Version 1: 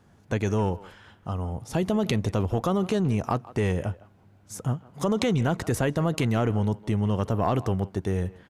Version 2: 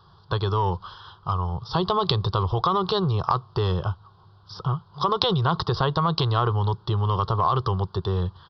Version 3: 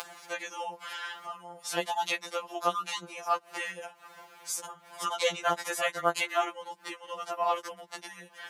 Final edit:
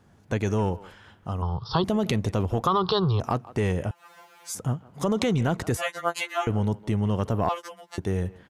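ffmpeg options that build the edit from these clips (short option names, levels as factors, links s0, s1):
-filter_complex "[1:a]asplit=2[s0][s1];[2:a]asplit=3[s2][s3][s4];[0:a]asplit=6[s5][s6][s7][s8][s9][s10];[s5]atrim=end=1.422[s11];[s0]atrim=start=1.418:end=1.842[s12];[s6]atrim=start=1.838:end=2.672[s13];[s1]atrim=start=2.668:end=3.202[s14];[s7]atrim=start=3.198:end=3.912[s15];[s2]atrim=start=3.908:end=4.552[s16];[s8]atrim=start=4.548:end=5.772[s17];[s3]atrim=start=5.768:end=6.472[s18];[s9]atrim=start=6.468:end=7.492[s19];[s4]atrim=start=7.488:end=7.982[s20];[s10]atrim=start=7.978[s21];[s11][s12]acrossfade=d=0.004:c1=hsin:c2=hsin[s22];[s22][s13]acrossfade=d=0.004:c1=hsin:c2=hsin[s23];[s23][s14]acrossfade=d=0.004:c1=hsin:c2=hsin[s24];[s24][s15]acrossfade=d=0.004:c1=hsin:c2=hsin[s25];[s25][s16]acrossfade=d=0.004:c1=hsin:c2=hsin[s26];[s26][s17]acrossfade=d=0.004:c1=hsin:c2=hsin[s27];[s27][s18]acrossfade=d=0.004:c1=hsin:c2=hsin[s28];[s28][s19]acrossfade=d=0.004:c1=hsin:c2=hsin[s29];[s29][s20]acrossfade=d=0.004:c1=hsin:c2=hsin[s30];[s30][s21]acrossfade=d=0.004:c1=hsin:c2=hsin"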